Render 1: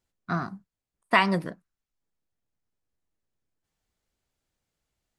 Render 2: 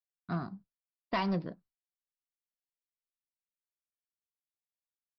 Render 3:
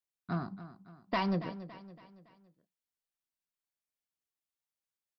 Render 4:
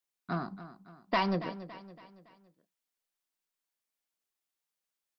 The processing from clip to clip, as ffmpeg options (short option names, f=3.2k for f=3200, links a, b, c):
-af "agate=range=-33dB:threshold=-50dB:ratio=3:detection=peak,equalizer=f=1.9k:t=o:w=1.9:g=-9.5,aresample=11025,asoftclip=type=hard:threshold=-22dB,aresample=44100,volume=-4dB"
-af "aecho=1:1:281|562|843|1124:0.2|0.0918|0.0422|0.0194"
-af "equalizer=f=81:t=o:w=1.6:g=-14.5,volume=4dB"